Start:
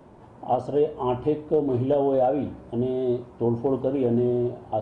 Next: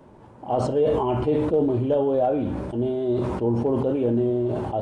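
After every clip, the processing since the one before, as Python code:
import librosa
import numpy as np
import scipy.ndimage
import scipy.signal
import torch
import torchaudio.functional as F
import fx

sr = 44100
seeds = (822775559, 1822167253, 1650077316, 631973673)

y = fx.notch(x, sr, hz=700.0, q=12.0)
y = fx.sustainer(y, sr, db_per_s=27.0)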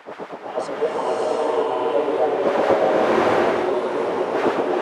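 y = fx.dmg_wind(x, sr, seeds[0], corner_hz=330.0, level_db=-19.0)
y = fx.filter_lfo_highpass(y, sr, shape='sine', hz=8.0, low_hz=480.0, high_hz=1900.0, q=1.2)
y = fx.rev_bloom(y, sr, seeds[1], attack_ms=700, drr_db=-5.5)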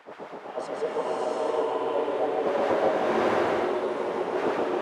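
y = x + 10.0 ** (-3.0 / 20.0) * np.pad(x, (int(147 * sr / 1000.0), 0))[:len(x)]
y = y * 10.0 ** (-8.0 / 20.0)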